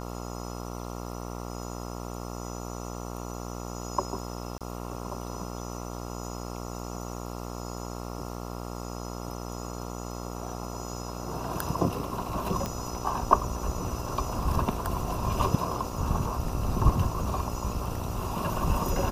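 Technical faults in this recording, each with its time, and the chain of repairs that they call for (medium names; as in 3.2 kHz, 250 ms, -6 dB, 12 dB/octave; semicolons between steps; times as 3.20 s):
buzz 60 Hz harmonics 23 -37 dBFS
4.58–4.61 s: dropout 27 ms
12.66 s: pop -17 dBFS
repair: de-click; de-hum 60 Hz, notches 23; interpolate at 4.58 s, 27 ms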